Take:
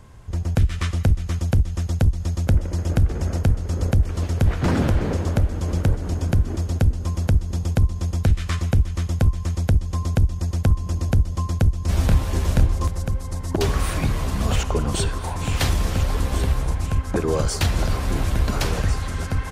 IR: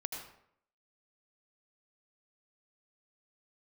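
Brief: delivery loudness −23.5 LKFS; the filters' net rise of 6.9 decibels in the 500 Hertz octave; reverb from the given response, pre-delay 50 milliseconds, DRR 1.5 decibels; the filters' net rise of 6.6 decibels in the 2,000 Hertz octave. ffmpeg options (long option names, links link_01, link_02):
-filter_complex "[0:a]equalizer=frequency=500:width_type=o:gain=8,equalizer=frequency=2000:width_type=o:gain=8,asplit=2[link_01][link_02];[1:a]atrim=start_sample=2205,adelay=50[link_03];[link_02][link_03]afir=irnorm=-1:irlink=0,volume=-2dB[link_04];[link_01][link_04]amix=inputs=2:normalize=0,volume=-4.5dB"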